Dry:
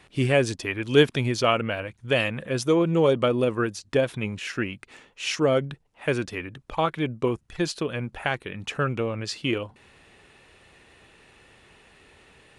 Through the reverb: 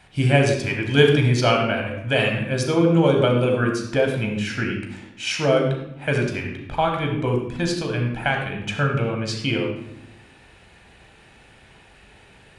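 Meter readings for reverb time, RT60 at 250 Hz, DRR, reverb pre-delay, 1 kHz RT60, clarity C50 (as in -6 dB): 0.85 s, 1.3 s, 1.5 dB, 15 ms, 0.80 s, 4.5 dB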